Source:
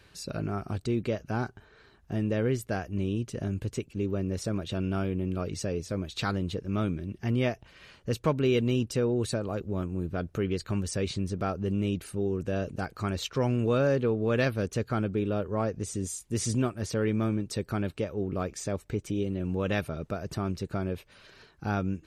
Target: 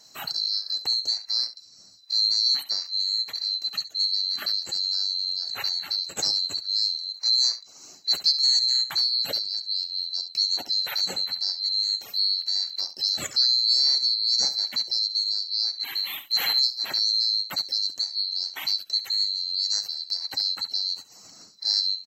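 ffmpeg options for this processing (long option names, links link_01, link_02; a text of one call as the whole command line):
ffmpeg -i in.wav -af "afftfilt=real='real(if(lt(b,736),b+184*(1-2*mod(floor(b/184),2)),b),0)':imag='imag(if(lt(b,736),b+184*(1-2*mod(floor(b/184),2)),b),0)':win_size=2048:overlap=0.75,highpass=frequency=92:width=0.5412,highpass=frequency=92:width=1.3066,lowshelf=frequency=130:gain=-4,aecho=1:1:11|68:0.158|0.224,adynamicequalizer=threshold=0.0141:dfrequency=3800:dqfactor=0.7:tfrequency=3800:tqfactor=0.7:attack=5:release=100:ratio=0.375:range=3:mode=cutabove:tftype=highshelf,volume=5.5dB" out.wav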